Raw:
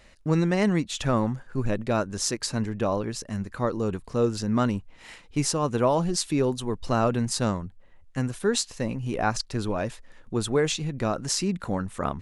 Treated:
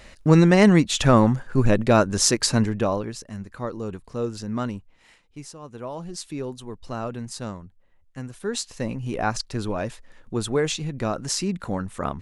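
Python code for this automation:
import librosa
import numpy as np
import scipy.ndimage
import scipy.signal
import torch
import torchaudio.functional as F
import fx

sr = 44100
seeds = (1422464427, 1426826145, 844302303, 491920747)

y = fx.gain(x, sr, db=fx.line((2.55, 8.0), (3.26, -4.0), (4.68, -4.0), (5.55, -16.0), (6.23, -7.5), (8.27, -7.5), (8.81, 0.5)))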